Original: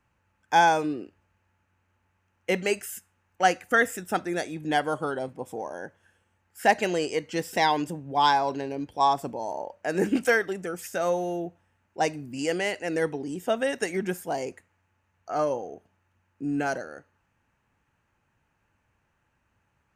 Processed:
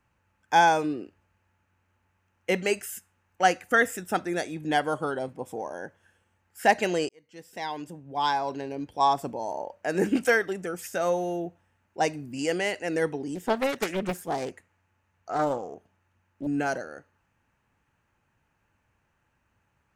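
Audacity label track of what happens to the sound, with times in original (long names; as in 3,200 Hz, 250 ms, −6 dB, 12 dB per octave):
7.090000	9.130000	fade in
13.350000	16.470000	highs frequency-modulated by the lows depth 0.67 ms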